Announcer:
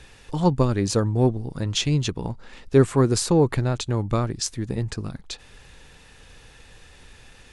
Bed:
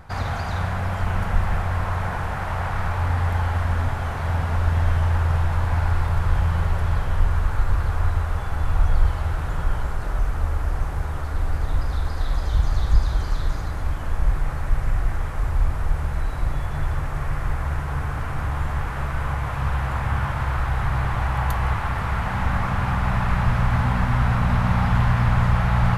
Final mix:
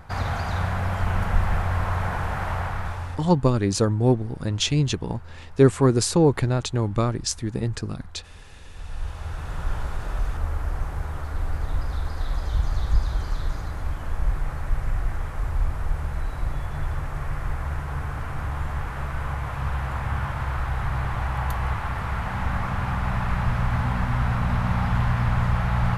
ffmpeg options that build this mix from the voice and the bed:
ffmpeg -i stem1.wav -i stem2.wav -filter_complex "[0:a]adelay=2850,volume=0.5dB[link_01];[1:a]volume=19.5dB,afade=type=out:start_time=2.48:duration=0.82:silence=0.0707946,afade=type=in:start_time=8.74:duration=1.04:silence=0.1[link_02];[link_01][link_02]amix=inputs=2:normalize=0" out.wav

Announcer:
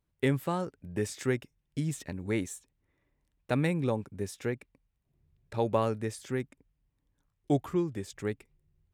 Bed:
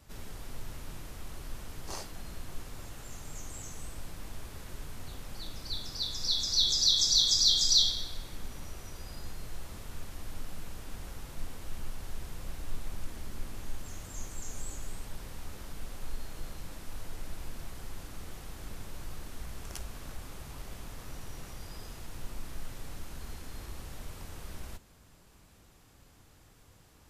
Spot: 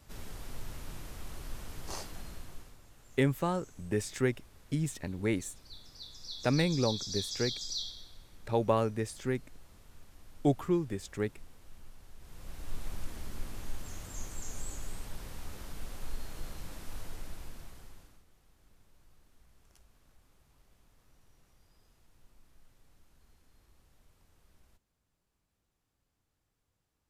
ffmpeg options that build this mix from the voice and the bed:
ffmpeg -i stem1.wav -i stem2.wav -filter_complex "[0:a]adelay=2950,volume=0dB[link_01];[1:a]volume=12.5dB,afade=type=out:start_time=2.15:duration=0.64:silence=0.223872,afade=type=in:start_time=12.18:duration=0.68:silence=0.223872,afade=type=out:start_time=16.98:duration=1.26:silence=0.0841395[link_02];[link_01][link_02]amix=inputs=2:normalize=0" out.wav

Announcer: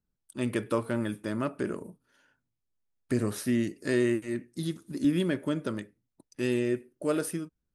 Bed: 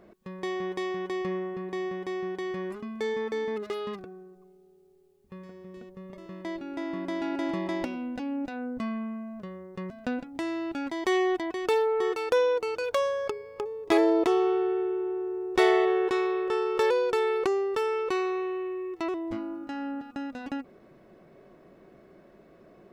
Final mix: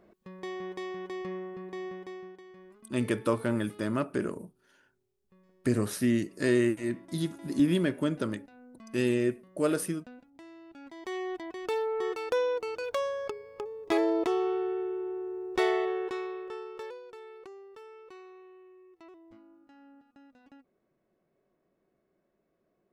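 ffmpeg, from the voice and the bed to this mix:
ffmpeg -i stem1.wav -i stem2.wav -filter_complex "[0:a]adelay=2550,volume=1dB[link_01];[1:a]volume=8dB,afade=type=out:start_time=1.9:duration=0.53:silence=0.237137,afade=type=in:start_time=10.68:duration=1.37:silence=0.199526,afade=type=out:start_time=15.52:duration=1.49:silence=0.141254[link_02];[link_01][link_02]amix=inputs=2:normalize=0" out.wav

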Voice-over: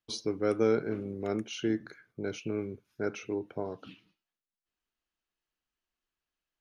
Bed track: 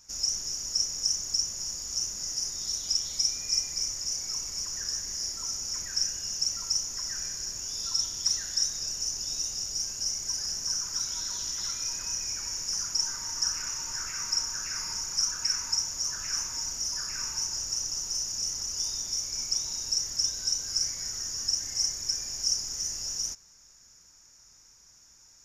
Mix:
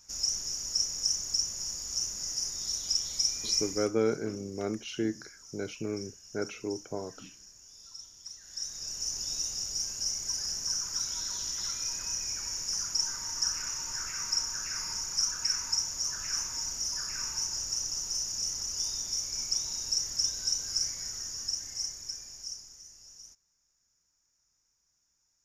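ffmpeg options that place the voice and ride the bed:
ffmpeg -i stem1.wav -i stem2.wav -filter_complex "[0:a]adelay=3350,volume=-1dB[link_01];[1:a]volume=15dB,afade=type=out:start_time=3.65:duration=0.26:silence=0.149624,afade=type=in:start_time=8.41:duration=0.76:silence=0.149624,afade=type=out:start_time=20.64:duration=2.19:silence=0.141254[link_02];[link_01][link_02]amix=inputs=2:normalize=0" out.wav

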